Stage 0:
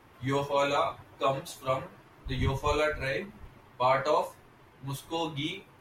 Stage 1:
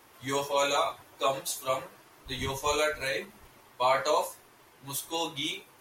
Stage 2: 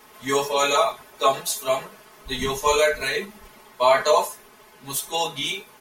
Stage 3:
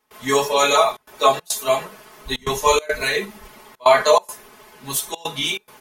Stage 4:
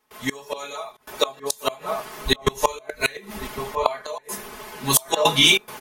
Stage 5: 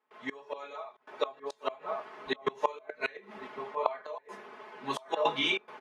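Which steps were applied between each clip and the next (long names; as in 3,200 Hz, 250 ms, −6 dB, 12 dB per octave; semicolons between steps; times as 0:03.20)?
bass and treble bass −10 dB, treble +12 dB
comb filter 4.7 ms, depth 91%; level +5 dB
gate pattern ".xxxxxxxx.xxx" 140 BPM −24 dB; level +4 dB
slap from a distant wall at 190 metres, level −15 dB; gate with flip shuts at −11 dBFS, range −26 dB; automatic gain control
band-pass filter 300–2,200 Hz; level −8 dB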